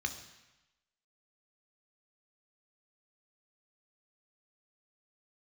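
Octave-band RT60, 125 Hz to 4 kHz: 1.0, 0.95, 0.95, 1.1, 1.1, 1.0 seconds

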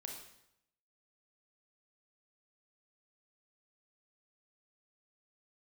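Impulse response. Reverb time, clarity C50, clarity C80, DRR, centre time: 0.80 s, 4.0 dB, 7.0 dB, 0.5 dB, 39 ms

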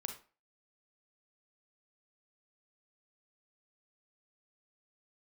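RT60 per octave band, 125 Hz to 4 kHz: 0.30, 0.35, 0.35, 0.35, 0.35, 0.25 seconds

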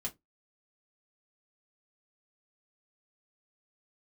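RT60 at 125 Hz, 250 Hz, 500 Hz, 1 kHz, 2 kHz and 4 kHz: 0.25, 0.20, 0.20, 0.15, 0.15, 0.10 seconds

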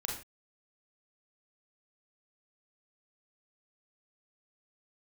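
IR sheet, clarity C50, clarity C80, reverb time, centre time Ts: 4.0 dB, 9.5 dB, non-exponential decay, 36 ms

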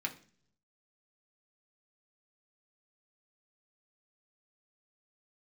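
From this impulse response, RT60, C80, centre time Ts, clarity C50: non-exponential decay, 19.0 dB, 9 ms, 14.5 dB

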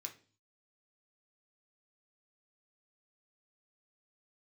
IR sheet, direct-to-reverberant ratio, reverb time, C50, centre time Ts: 2.5 dB, 0.40 s, 13.0 dB, 12 ms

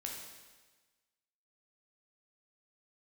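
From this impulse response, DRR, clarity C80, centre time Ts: −1.0 dB, 4.5 dB, 59 ms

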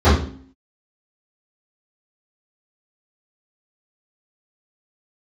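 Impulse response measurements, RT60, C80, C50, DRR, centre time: 0.50 s, 8.5 dB, 3.5 dB, −16.0 dB, 42 ms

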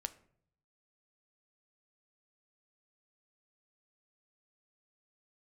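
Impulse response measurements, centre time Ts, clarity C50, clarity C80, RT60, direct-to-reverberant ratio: 4 ms, 17.0 dB, 20.5 dB, 0.60 s, 10.5 dB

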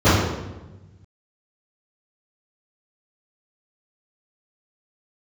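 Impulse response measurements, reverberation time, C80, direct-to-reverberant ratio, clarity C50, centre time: 1.1 s, 2.5 dB, −19.0 dB, −1.0 dB, 86 ms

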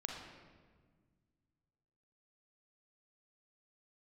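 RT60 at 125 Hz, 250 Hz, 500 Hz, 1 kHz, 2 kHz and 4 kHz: 2.8, 2.4, 1.7, 1.4, 1.3, 1.0 seconds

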